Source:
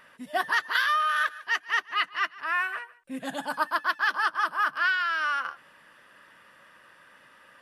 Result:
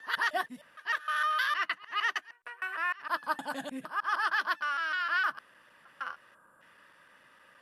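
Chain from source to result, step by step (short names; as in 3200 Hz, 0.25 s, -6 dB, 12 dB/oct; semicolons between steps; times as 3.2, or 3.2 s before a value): slices in reverse order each 0.154 s, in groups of 5; spectral gain 6.35–6.61, 1700–7000 Hz -18 dB; gain -4.5 dB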